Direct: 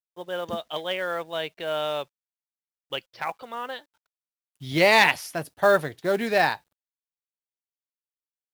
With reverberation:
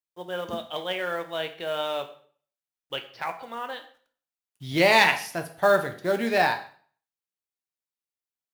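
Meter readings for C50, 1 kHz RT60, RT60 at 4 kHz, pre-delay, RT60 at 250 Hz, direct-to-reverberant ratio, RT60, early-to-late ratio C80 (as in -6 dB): 12.0 dB, 0.45 s, 0.45 s, 5 ms, 0.55 s, 6.5 dB, 0.50 s, 16.0 dB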